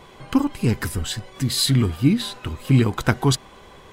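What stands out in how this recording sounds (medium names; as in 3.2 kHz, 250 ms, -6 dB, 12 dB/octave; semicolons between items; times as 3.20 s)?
noise floor -46 dBFS; spectral tilt -5.0 dB/octave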